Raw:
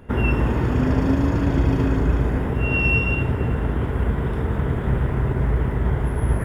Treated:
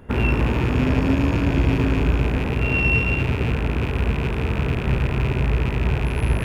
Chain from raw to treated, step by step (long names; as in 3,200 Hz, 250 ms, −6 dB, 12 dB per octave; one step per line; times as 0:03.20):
loose part that buzzes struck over −28 dBFS, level −20 dBFS